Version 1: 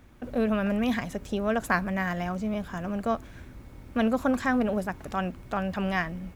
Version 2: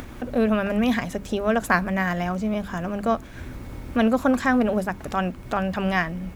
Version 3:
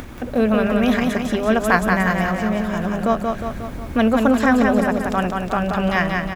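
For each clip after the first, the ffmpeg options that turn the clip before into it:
-af "acompressor=mode=upward:threshold=-31dB:ratio=2.5,bandreject=f=50:t=h:w=6,bandreject=f=100:t=h:w=6,bandreject=f=150:t=h:w=6,bandreject=f=200:t=h:w=6,volume=5dB"
-af "aecho=1:1:180|360|540|720|900|1080|1260|1440:0.631|0.353|0.198|0.111|0.0621|0.0347|0.0195|0.0109,volume=3dB"

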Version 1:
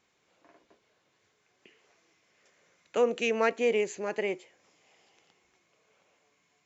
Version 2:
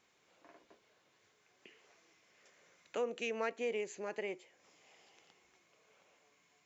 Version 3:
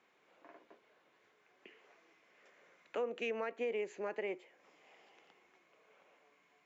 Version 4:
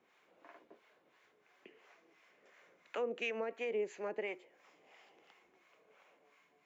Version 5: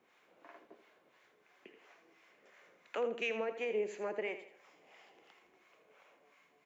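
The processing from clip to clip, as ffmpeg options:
-af "lowshelf=f=230:g=-4,acompressor=threshold=-52dB:ratio=1.5"
-filter_complex "[0:a]acrossover=split=190 3000:gain=0.224 1 0.2[a][b][c];[a][b][c]amix=inputs=3:normalize=0,alimiter=level_in=8dB:limit=-24dB:level=0:latency=1:release=178,volume=-8dB,volume=3dB"
-filter_complex "[0:a]acrossover=split=690[a][b];[a]aeval=exprs='val(0)*(1-0.7/2+0.7/2*cos(2*PI*2.9*n/s))':c=same[c];[b]aeval=exprs='val(0)*(1-0.7/2-0.7/2*cos(2*PI*2.9*n/s))':c=same[d];[c][d]amix=inputs=2:normalize=0,volume=3.5dB"
-af "aecho=1:1:82|164|246|328:0.282|0.107|0.0407|0.0155,volume=1.5dB"

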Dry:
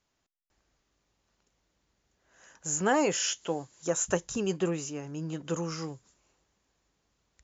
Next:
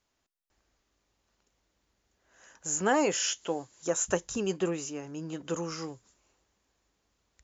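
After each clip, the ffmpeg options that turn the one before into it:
-af "equalizer=f=150:w=3.2:g=-6.5"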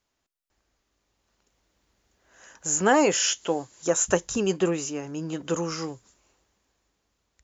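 -af "dynaudnorm=f=320:g=9:m=6dB"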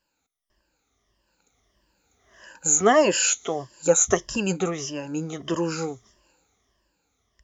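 -af "afftfilt=real='re*pow(10,15/40*sin(2*PI*(1.3*log(max(b,1)*sr/1024/100)/log(2)-(-1.6)*(pts-256)/sr)))':imag='im*pow(10,15/40*sin(2*PI*(1.3*log(max(b,1)*sr/1024/100)/log(2)-(-1.6)*(pts-256)/sr)))':win_size=1024:overlap=0.75"

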